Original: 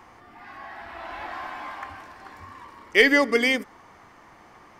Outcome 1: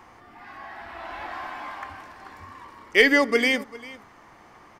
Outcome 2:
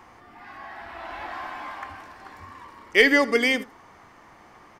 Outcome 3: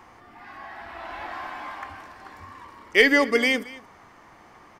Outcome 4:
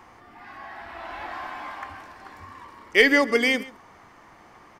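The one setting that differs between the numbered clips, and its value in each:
echo, time: 398, 79, 225, 136 ms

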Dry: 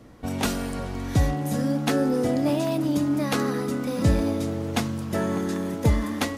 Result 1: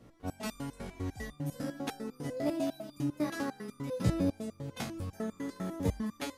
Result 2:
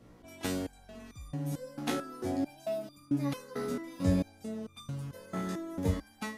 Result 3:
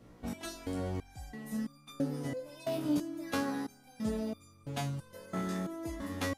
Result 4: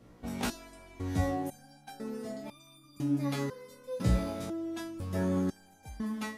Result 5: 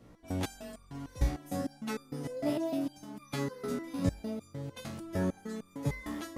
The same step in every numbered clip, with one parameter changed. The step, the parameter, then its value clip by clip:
stepped resonator, rate: 10, 4.5, 3, 2, 6.6 Hz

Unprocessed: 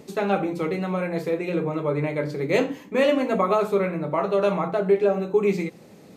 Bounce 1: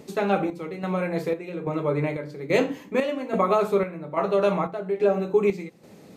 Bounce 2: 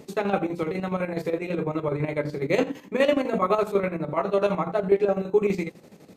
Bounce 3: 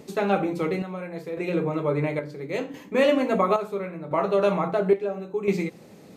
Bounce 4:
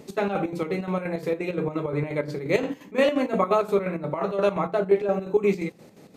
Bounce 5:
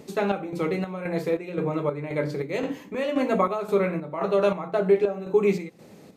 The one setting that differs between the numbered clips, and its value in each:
chopper, rate: 1.2, 12, 0.73, 5.7, 1.9 Hz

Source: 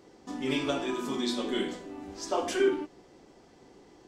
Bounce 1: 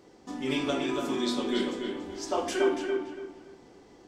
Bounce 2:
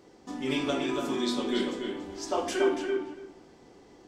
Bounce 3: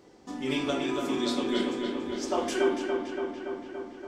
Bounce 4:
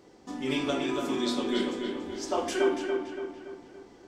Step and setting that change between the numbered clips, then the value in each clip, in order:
darkening echo, feedback: 29, 16, 73, 48%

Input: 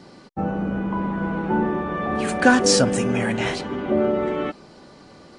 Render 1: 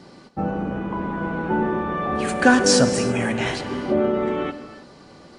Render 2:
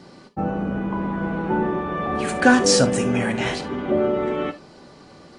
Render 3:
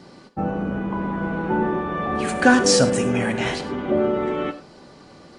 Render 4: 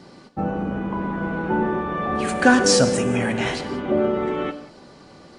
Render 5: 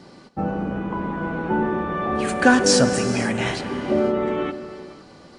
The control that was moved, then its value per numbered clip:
non-linear reverb, gate: 350, 90, 130, 210, 540 ms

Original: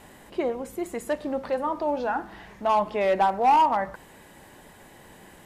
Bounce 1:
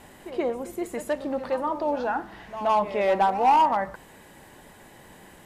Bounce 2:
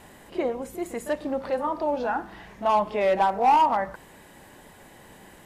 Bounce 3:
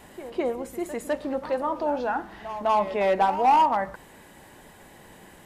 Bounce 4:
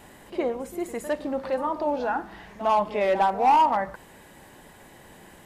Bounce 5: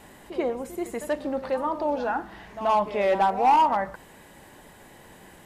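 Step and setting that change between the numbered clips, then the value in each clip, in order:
pre-echo, time: 124, 33, 204, 55, 82 ms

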